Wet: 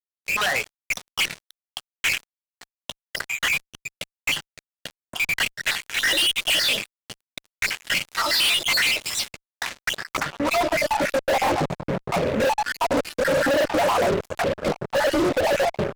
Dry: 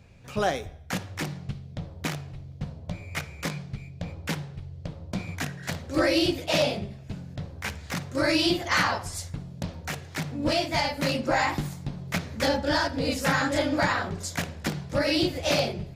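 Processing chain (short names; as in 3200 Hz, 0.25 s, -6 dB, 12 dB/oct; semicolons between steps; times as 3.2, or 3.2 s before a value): random spectral dropouts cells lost 54%; limiter -24.5 dBFS, peak gain reduction 11 dB; band-pass sweep 2700 Hz -> 550 Hz, 9.35–11.48; fuzz box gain 51 dB, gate -56 dBFS; gain -5 dB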